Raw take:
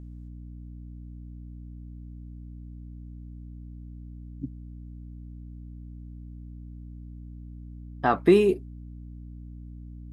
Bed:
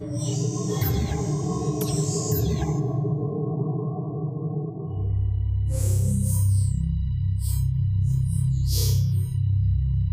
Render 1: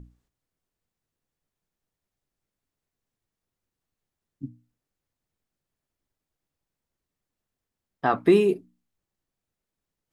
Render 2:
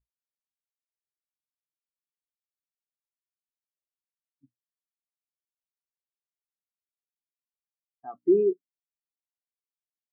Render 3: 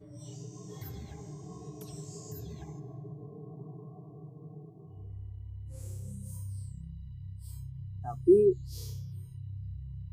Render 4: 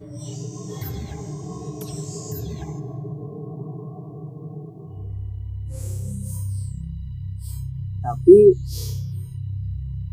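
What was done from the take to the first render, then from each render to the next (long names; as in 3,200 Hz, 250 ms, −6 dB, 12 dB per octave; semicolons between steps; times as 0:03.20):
mains-hum notches 60/120/180/240/300 Hz
brickwall limiter −12.5 dBFS, peak gain reduction 4 dB; every bin expanded away from the loudest bin 2.5 to 1
mix in bed −19 dB
level +12 dB; brickwall limiter −1 dBFS, peak gain reduction 1 dB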